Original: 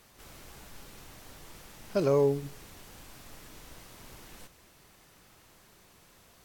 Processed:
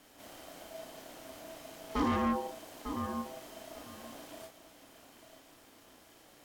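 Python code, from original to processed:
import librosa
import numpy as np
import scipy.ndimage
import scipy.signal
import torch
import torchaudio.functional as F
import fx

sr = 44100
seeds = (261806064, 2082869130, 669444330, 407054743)

y = fx.doubler(x, sr, ms=34.0, db=-3.5)
y = fx.echo_feedback(y, sr, ms=898, feedback_pct=16, wet_db=-12.5)
y = np.clip(y, -10.0 ** (-27.0 / 20.0), 10.0 ** (-27.0 / 20.0))
y = y * np.sin(2.0 * np.pi * 650.0 * np.arange(len(y)) / sr)
y = fx.small_body(y, sr, hz=(280.0, 3100.0), ring_ms=45, db=11)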